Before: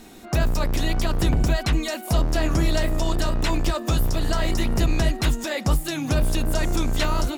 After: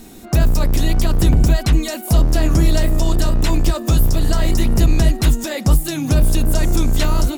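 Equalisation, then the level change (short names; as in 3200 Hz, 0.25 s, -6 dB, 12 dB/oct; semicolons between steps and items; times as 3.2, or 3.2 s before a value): low shelf 460 Hz +9 dB; high shelf 5800 Hz +11 dB; -1.0 dB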